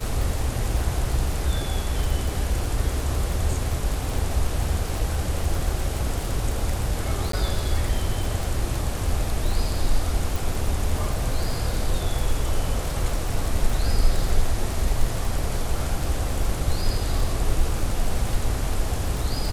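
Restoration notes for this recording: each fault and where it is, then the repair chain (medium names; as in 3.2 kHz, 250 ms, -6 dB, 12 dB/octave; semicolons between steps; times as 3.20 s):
crackle 30 per s -25 dBFS
7.32–7.33 s: dropout 13 ms
10.36 s: pop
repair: de-click; interpolate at 7.32 s, 13 ms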